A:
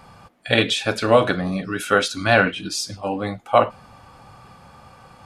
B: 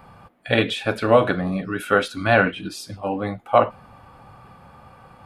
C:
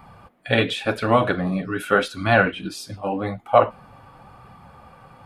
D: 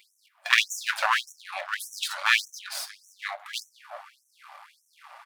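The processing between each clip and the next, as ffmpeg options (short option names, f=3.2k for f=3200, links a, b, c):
-af "equalizer=f=6.2k:w=0.86:g=-12.5"
-af "flanger=delay=0.9:depth=6.6:regen=-47:speed=0.87:shape=sinusoidal,volume=4dB"
-filter_complex "[0:a]aeval=exprs='max(val(0),0)':c=same,asplit=2[a][b];[b]adelay=186,lowpass=f=2.6k:p=1,volume=-20dB,asplit=2[c][d];[d]adelay=186,lowpass=f=2.6k:p=1,volume=0.4,asplit=2[e][f];[f]adelay=186,lowpass=f=2.6k:p=1,volume=0.4[g];[a][c][e][g]amix=inputs=4:normalize=0,afftfilt=real='re*gte(b*sr/1024,540*pow(5700/540,0.5+0.5*sin(2*PI*1.7*pts/sr)))':imag='im*gte(b*sr/1024,540*pow(5700/540,0.5+0.5*sin(2*PI*1.7*pts/sr)))':win_size=1024:overlap=0.75,volume=6.5dB"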